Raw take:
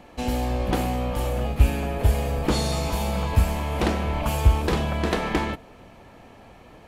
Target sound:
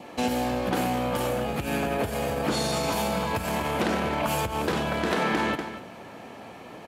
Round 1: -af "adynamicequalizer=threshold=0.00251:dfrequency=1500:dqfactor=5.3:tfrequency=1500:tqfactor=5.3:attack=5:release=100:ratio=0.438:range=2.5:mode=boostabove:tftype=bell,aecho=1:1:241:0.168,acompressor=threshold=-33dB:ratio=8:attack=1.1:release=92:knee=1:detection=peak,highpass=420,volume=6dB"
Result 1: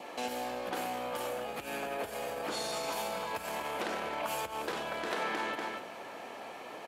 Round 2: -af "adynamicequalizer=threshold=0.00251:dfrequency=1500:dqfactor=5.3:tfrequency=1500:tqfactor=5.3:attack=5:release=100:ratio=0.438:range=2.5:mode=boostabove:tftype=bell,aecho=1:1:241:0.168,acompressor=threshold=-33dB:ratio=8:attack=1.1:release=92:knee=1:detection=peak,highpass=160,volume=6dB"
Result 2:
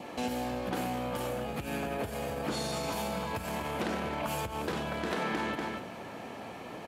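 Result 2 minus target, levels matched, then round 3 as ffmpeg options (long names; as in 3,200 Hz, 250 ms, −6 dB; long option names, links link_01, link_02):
downward compressor: peak gain reduction +7.5 dB
-af "adynamicequalizer=threshold=0.00251:dfrequency=1500:dqfactor=5.3:tfrequency=1500:tqfactor=5.3:attack=5:release=100:ratio=0.438:range=2.5:mode=boostabove:tftype=bell,aecho=1:1:241:0.168,acompressor=threshold=-24.5dB:ratio=8:attack=1.1:release=92:knee=1:detection=peak,highpass=160,volume=6dB"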